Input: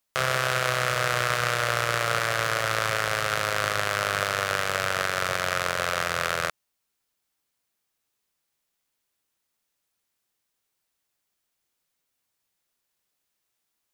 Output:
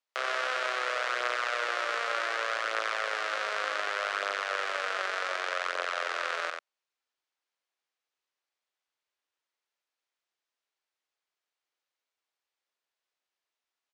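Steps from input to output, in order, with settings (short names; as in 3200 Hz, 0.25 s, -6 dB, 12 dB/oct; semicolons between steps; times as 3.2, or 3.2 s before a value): Bessel high-pass 480 Hz, order 8; air absorption 110 m; echo 90 ms -4.5 dB; gain -5 dB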